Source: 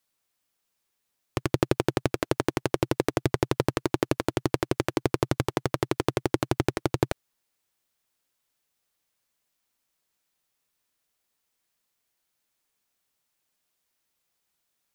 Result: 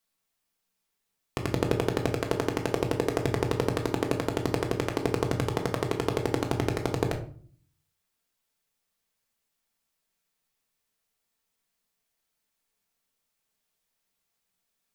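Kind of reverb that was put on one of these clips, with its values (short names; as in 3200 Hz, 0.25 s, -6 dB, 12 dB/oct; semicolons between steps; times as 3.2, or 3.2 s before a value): shoebox room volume 450 m³, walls furnished, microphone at 1.6 m; gain -3.5 dB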